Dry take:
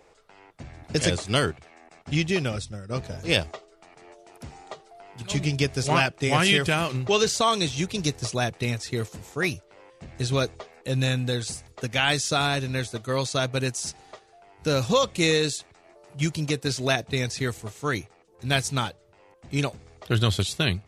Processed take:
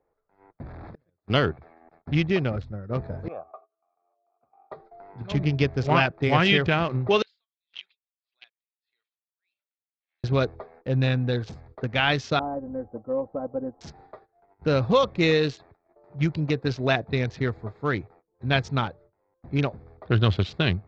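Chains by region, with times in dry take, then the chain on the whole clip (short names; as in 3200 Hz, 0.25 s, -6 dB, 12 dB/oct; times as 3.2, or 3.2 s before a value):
0.66–1.3 delta modulation 64 kbps, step -31.5 dBFS + flipped gate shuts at -20 dBFS, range -34 dB + compressor 8:1, threshold -41 dBFS
3.28–4.72 treble ducked by the level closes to 1500 Hz, closed at -20.5 dBFS + vowel filter a + bell 1200 Hz +9.5 dB 0.22 oct
7.22–10.24 compressor 4:1, threshold -39 dBFS + resonant high-pass 3000 Hz, resonance Q 13 + dB-linear tremolo 1.7 Hz, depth 35 dB
12.39–13.81 ladder low-pass 920 Hz, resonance 35% + comb 3.8 ms, depth 81%
whole clip: Wiener smoothing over 15 samples; gate -52 dBFS, range -18 dB; Bessel low-pass 3100 Hz, order 8; gain +2 dB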